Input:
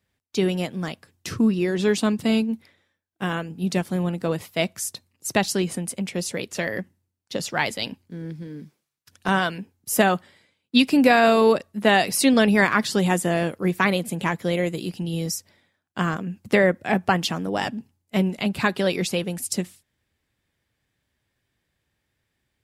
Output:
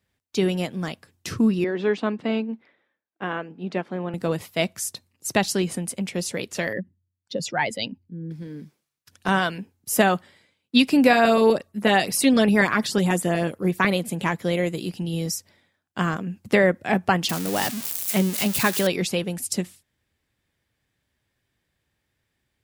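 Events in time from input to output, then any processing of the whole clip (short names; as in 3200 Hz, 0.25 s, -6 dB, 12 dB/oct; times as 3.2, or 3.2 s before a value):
1.64–4.14 BPF 270–2300 Hz
6.73–8.31 spectral contrast raised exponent 1.7
11.13–13.91 LFO notch saw up 8.1 Hz 570–7900 Hz
17.29–18.87 switching spikes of -16.5 dBFS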